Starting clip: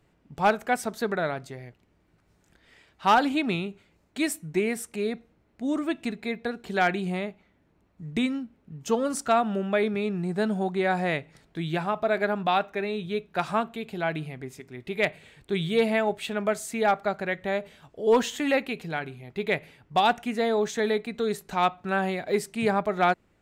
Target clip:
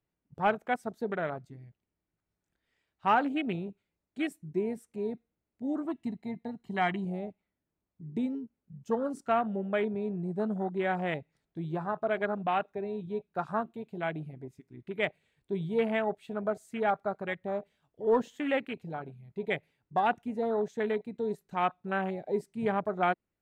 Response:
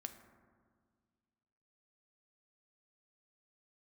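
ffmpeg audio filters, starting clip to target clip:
-filter_complex "[0:a]afwtdn=0.0316,asettb=1/sr,asplit=3[link_01][link_02][link_03];[link_01]atrim=end=5.854[link_04];[link_02]atrim=start=5.85:end=7.05,asetpts=PTS-STARTPTS,afade=type=in:duration=0.004:curve=qsin,afade=type=out:start_time=1.196:duration=0.004:curve=qsin,aecho=1:1:1:0.59,atrim=end_sample=52920[link_05];[link_03]atrim=start=7.046[link_06];[link_04][link_05]acrossfade=duration=0.004:curve1=hsin:curve2=qsin[link_07];[link_07][link_06]acrossfade=duration=0.004:curve1=qsin:curve2=hsin,volume=-5dB"

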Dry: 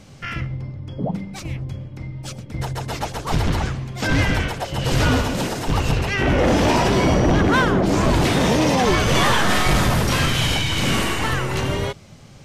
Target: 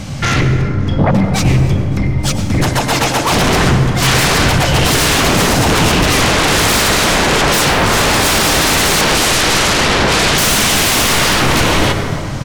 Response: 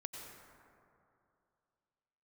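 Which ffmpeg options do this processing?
-filter_complex "[0:a]asettb=1/sr,asplit=3[link_01][link_02][link_03];[link_01]atrim=end=9.014[link_04];[link_02]atrim=start=9.01:end=10.38,asetpts=PTS-STARTPTS,afade=type=in:duration=0.004:curve=qsin,afade=type=out:start_time=1.366:duration=0.004:curve=qsin,lowpass=3000[link_05];[link_03]atrim=start=10.376[link_06];[link_04][link_05]acrossfade=duration=0.004:curve1=hsin:curve2=qsin[link_07];[link_07][link_06]acrossfade=duration=0.004:curve1=qsin:curve2=hsin,equalizer=frequency=420:width=2.6:gain=-8,asettb=1/sr,asplit=3[link_08][link_09][link_10];[link_08]atrim=end=2.684[link_11];[link_09]atrim=start=2.68:end=3.32,asetpts=PTS-STARTPTS,afade=type=in:duration=0.004:curve=qsin,afade=type=out:start_time=0.636:duration=0.004:curve=qsin,highpass=frequency=230:width=0.5412,highpass=frequency=230:width=1.3066[link_12];[link_10]atrim=start=3.316[link_13];[link_11][link_12]acrossfade=duration=0.004:curve1=hsin:curve2=qsin[link_14];[link_14][link_13]acrossfade=duration=0.004:curve1=qsin:curve2=hsin,aeval=exprs='0.355*sin(PI/2*6.31*val(0)/0.355)':channel_layout=same,aecho=1:1:280|560|840|1120:0.0841|0.0488|0.0283|0.0164,asplit=2[link_15][link_16];[1:a]atrim=start_sample=2205,lowshelf=frequency=340:gain=5[link_17];[link_16][link_17]afir=irnorm=-1:irlink=0,volume=5dB[link_18];[link_15][link_18]amix=inputs=2:normalize=0,volume=-7.5dB"

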